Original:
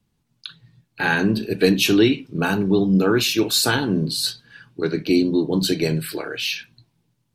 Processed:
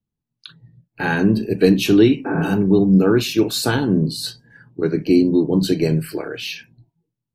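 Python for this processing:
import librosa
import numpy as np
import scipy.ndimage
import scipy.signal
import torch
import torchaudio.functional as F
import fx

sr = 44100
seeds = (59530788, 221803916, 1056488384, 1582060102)

y = fx.noise_reduce_blind(x, sr, reduce_db=17)
y = fx.tilt_shelf(y, sr, db=4.5, hz=870.0)
y = fx.spec_repair(y, sr, seeds[0], start_s=2.28, length_s=0.21, low_hz=220.0, high_hz=2600.0, source='after')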